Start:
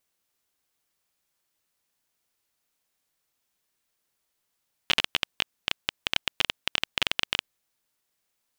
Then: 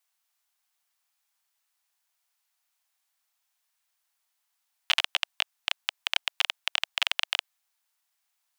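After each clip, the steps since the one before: steep high-pass 680 Hz 48 dB/octave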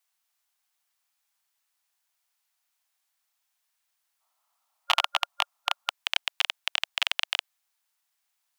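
time-frequency box 4.21–5.89 s, 580–1400 Hz +11 dB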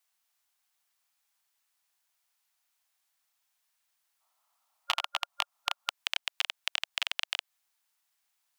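compression 5:1, threshold -26 dBFS, peak gain reduction 9.5 dB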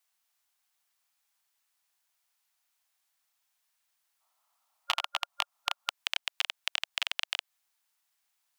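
no audible change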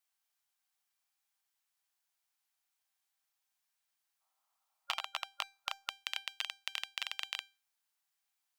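feedback comb 790 Hz, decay 0.31 s, mix 70%; trim +3 dB

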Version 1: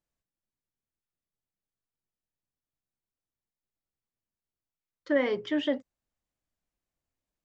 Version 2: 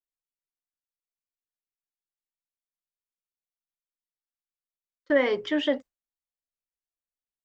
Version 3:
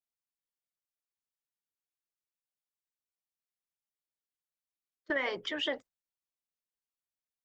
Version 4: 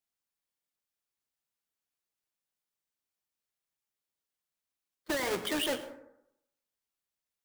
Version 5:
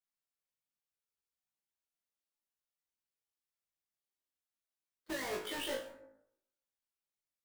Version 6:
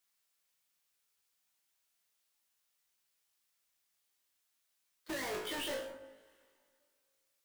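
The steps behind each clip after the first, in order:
gate with hold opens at -33 dBFS; peaking EQ 140 Hz -7.5 dB 1.9 oct; trim +5 dB
harmonic-percussive split harmonic -16 dB
square wave that keeps the level; peak limiter -30.5 dBFS, peak gain reduction 11 dB; plate-style reverb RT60 0.81 s, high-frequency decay 0.4×, pre-delay 85 ms, DRR 11.5 dB; trim +3.5 dB
chorus 0.45 Hz, delay 15 ms, depth 6 ms; on a send: flutter echo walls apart 3.2 m, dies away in 0.28 s; on the sum: trim -6 dB
saturation -38.5 dBFS, distortion -12 dB; plate-style reverb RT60 2.3 s, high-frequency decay 0.7×, DRR 20 dB; tape noise reduction on one side only encoder only; trim +4 dB

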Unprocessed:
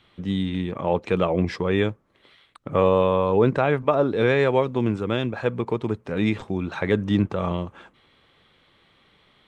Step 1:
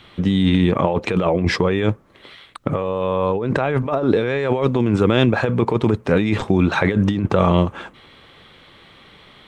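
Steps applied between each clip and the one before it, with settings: compressor with a negative ratio -26 dBFS, ratio -1; trim +8.5 dB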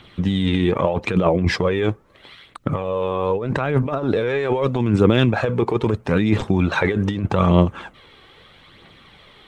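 phaser 0.79 Hz, delay 2.8 ms, feedback 39%; trim -2 dB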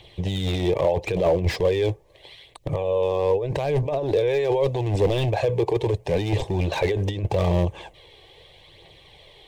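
hard clipper -13.5 dBFS, distortion -12 dB; static phaser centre 560 Hz, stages 4; slew-rate limiter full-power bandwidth 120 Hz; trim +1.5 dB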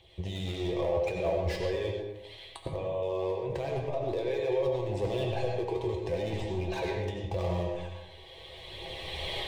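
recorder AGC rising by 15 dB/s; feedback comb 74 Hz, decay 0.19 s, harmonics odd, mix 80%; on a send at -1 dB: reverberation RT60 0.95 s, pre-delay 50 ms; on the sum: trim -3.5 dB

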